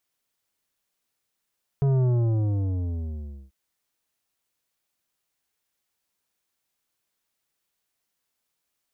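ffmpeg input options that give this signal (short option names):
-f lavfi -i "aevalsrc='0.106*clip((1.69-t)/1.49,0,1)*tanh(3.35*sin(2*PI*140*1.69/log(65/140)*(exp(log(65/140)*t/1.69)-1)))/tanh(3.35)':d=1.69:s=44100"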